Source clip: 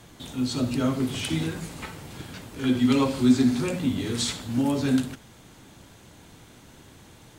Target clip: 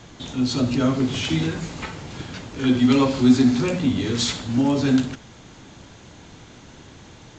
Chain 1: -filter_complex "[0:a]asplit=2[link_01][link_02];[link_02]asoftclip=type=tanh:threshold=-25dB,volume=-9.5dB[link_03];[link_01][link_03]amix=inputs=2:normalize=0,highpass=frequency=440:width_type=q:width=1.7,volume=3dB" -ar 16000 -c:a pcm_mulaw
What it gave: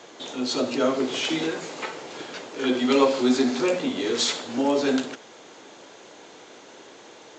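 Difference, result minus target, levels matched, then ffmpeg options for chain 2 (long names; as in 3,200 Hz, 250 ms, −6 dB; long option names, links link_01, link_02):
500 Hz band +7.0 dB
-filter_complex "[0:a]asplit=2[link_01][link_02];[link_02]asoftclip=type=tanh:threshold=-25dB,volume=-9.5dB[link_03];[link_01][link_03]amix=inputs=2:normalize=0,volume=3dB" -ar 16000 -c:a pcm_mulaw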